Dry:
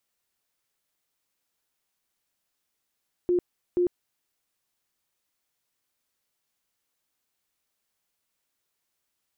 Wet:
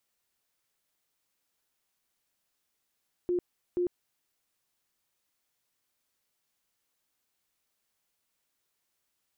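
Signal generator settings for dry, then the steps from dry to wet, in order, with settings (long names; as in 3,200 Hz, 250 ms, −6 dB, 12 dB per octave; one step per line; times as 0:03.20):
tone bursts 355 Hz, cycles 35, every 0.48 s, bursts 2, −19.5 dBFS
brickwall limiter −25 dBFS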